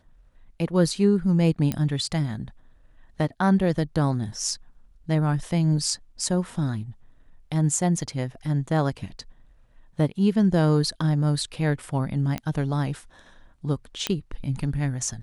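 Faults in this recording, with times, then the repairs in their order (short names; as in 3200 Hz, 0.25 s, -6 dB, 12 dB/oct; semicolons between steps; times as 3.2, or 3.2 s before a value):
1.72 pop -12 dBFS
12.38 pop -15 dBFS
14.07 pop -9 dBFS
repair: de-click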